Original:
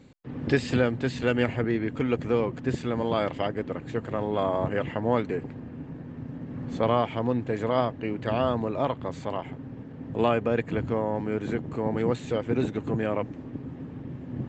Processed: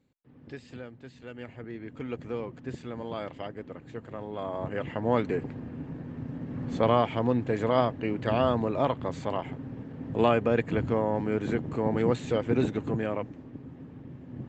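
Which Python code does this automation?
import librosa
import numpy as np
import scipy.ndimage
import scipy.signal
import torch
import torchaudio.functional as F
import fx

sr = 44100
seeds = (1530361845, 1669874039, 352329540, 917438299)

y = fx.gain(x, sr, db=fx.line((1.27, -19.0), (2.08, -9.5), (4.36, -9.5), (5.25, 0.5), (12.68, 0.5), (13.48, -6.5)))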